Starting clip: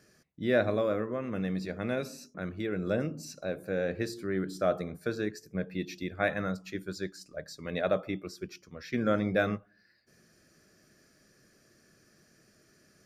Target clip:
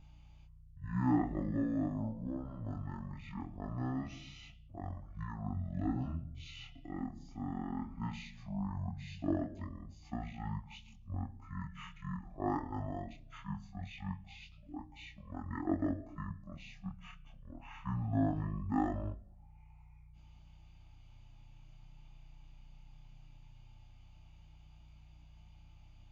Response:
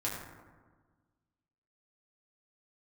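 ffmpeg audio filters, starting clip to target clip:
-filter_complex "[0:a]aeval=exprs='val(0)+0.00501*(sin(2*PI*60*n/s)+sin(2*PI*2*60*n/s)/2+sin(2*PI*3*60*n/s)/3+sin(2*PI*4*60*n/s)/4+sin(2*PI*5*60*n/s)/5)':c=same,asetrate=22050,aresample=44100,asplit=2[s0][s1];[1:a]atrim=start_sample=2205,asetrate=83790,aresample=44100[s2];[s1][s2]afir=irnorm=-1:irlink=0,volume=0.119[s3];[s0][s3]amix=inputs=2:normalize=0,flanger=delay=20:depth=7.8:speed=0.2,volume=0.631"

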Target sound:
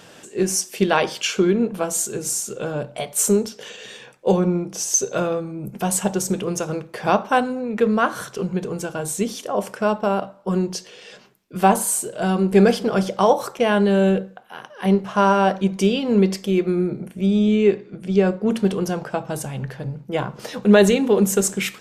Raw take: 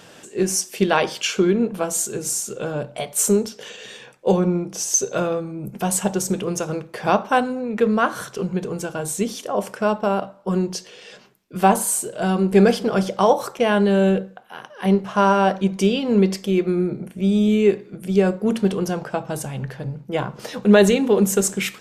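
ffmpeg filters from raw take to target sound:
-filter_complex "[0:a]asettb=1/sr,asplit=3[s0][s1][s2];[s0]atrim=end=17.264[s3];[s1]atrim=start=17.26:end=18.51,asetpts=PTS-STARTPTS,afade=t=in:d=0.004:c=qsin,afade=t=out:st=1.246:d=0.004:c=qsin,lowpass=5900[s4];[s2]atrim=start=18.506[s5];[s3][s4]acrossfade=d=0.004:c1=hsin:c2=qsin[s6];[s6][s5]acrossfade=d=0.004:c1=qsin:c2=hsin"

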